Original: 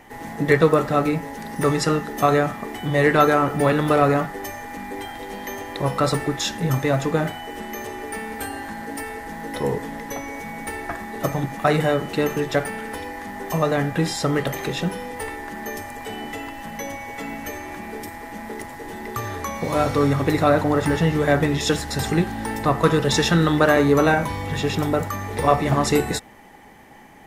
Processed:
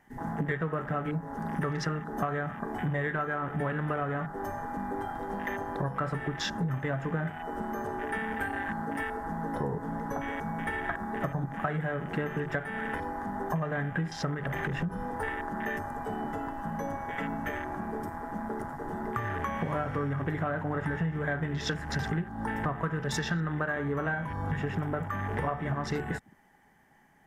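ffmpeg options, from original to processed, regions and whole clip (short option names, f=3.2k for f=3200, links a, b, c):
-filter_complex "[0:a]asettb=1/sr,asplit=3[a][b][c];[a]atrim=end=14.344[d];[b]atrim=start=14.34:end=15.03,asetpts=PTS-STARTPTS,afade=t=in:d=0.004:c=qsin,afade=t=out:st=0.686:d=0.004:c=qsin,asubboost=boost=7.5:cutoff=190,acompressor=threshold=-23dB:ratio=4:attack=3.2:release=140:knee=1:detection=peak[e];[c]atrim=start=15.026[f];[d][e]acrossfade=d=0.004:c1=hsin:c2=qsin[g];[g][f]acrossfade=d=0.004:c1=qsin:c2=hsin,afwtdn=0.0251,equalizer=f=160:t=o:w=0.33:g=6,equalizer=f=315:t=o:w=0.33:g=-4,equalizer=f=500:t=o:w=0.33:g=-5,equalizer=f=1.6k:t=o:w=0.33:g=8,equalizer=f=2.5k:t=o:w=0.33:g=-5,equalizer=f=4k:t=o:w=0.33:g=-6,acompressor=threshold=-28dB:ratio=10"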